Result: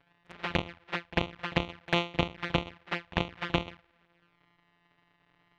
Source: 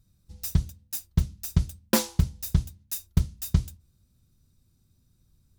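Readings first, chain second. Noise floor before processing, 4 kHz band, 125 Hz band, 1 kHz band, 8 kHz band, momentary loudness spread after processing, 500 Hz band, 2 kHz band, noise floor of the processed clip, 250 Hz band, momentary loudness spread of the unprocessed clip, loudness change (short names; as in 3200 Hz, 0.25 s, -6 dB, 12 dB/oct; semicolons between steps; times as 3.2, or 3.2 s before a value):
-67 dBFS, +3.0 dB, -10.5 dB, +6.5 dB, -23.0 dB, 7 LU, +3.0 dB, +9.5 dB, -71 dBFS, -3.5 dB, 9 LU, -4.0 dB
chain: sample sorter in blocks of 256 samples; LPF 2800 Hz 24 dB/oct; tilt +4.5 dB/oct; limiter -9.5 dBFS, peak gain reduction 6 dB; envelope flanger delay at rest 7.3 ms, full sweep at -33 dBFS; pre-echo 47 ms -19.5 dB; gain +6 dB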